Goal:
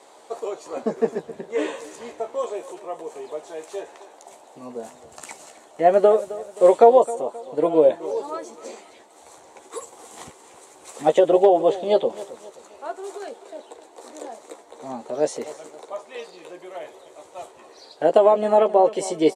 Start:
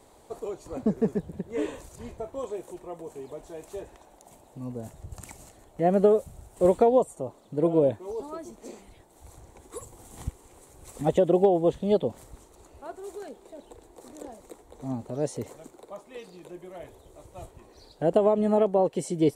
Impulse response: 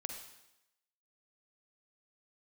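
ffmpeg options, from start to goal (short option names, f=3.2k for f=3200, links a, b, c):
-filter_complex "[0:a]highpass=480,lowpass=7.8k,asplit=2[a][b];[b]adelay=13,volume=-7dB[c];[a][c]amix=inputs=2:normalize=0,aecho=1:1:264|528|792:0.141|0.0579|0.0237,volume=8.5dB"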